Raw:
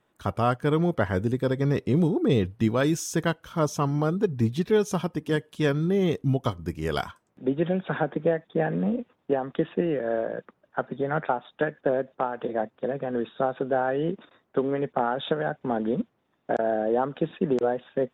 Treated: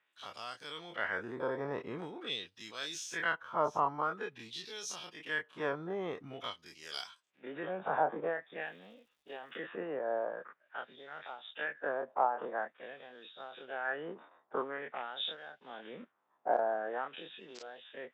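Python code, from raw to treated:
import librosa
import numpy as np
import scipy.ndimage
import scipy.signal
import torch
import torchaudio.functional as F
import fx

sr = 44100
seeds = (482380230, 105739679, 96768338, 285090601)

y = fx.spec_dilate(x, sr, span_ms=60)
y = fx.filter_lfo_bandpass(y, sr, shape='sine', hz=0.47, low_hz=870.0, high_hz=4900.0, q=2.2)
y = fx.dmg_crackle(y, sr, seeds[0], per_s=350.0, level_db=-64.0, at=(8.59, 9.56), fade=0.02)
y = y * librosa.db_to_amplitude(-2.0)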